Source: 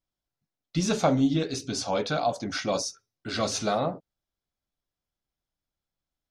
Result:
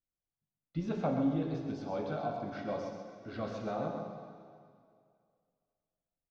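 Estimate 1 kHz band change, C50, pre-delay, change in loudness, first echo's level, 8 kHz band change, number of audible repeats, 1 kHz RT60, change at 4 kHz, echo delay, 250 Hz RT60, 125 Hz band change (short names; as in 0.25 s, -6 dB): -9.5 dB, 2.5 dB, 7 ms, -9.0 dB, -7.0 dB, under -30 dB, 1, 2.2 s, -22.0 dB, 0.131 s, 2.2 s, -7.0 dB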